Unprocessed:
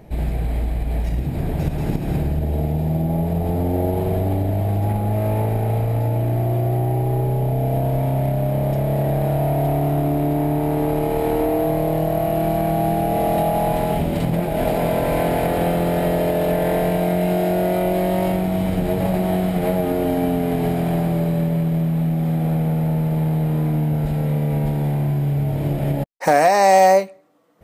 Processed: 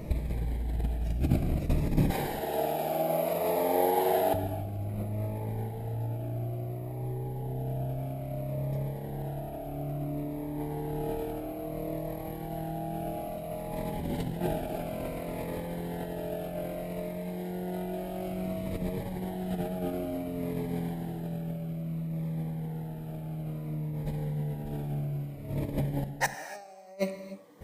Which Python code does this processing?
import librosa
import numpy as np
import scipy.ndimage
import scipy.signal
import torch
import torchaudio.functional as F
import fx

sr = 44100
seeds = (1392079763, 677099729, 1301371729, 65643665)

y = fx.cheby1_highpass(x, sr, hz=710.0, order=2, at=(2.1, 4.34))
y = fx.over_compress(y, sr, threshold_db=-26.0, ratio=-0.5)
y = fx.rev_gated(y, sr, seeds[0], gate_ms=320, shape='flat', drr_db=9.0)
y = fx.notch_cascade(y, sr, direction='falling', hz=0.59)
y = y * 10.0 ** (-3.5 / 20.0)